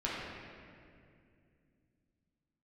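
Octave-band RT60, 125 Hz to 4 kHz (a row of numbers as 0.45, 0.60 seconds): 3.7, 3.7, 2.7, 2.0, 2.2, 1.6 seconds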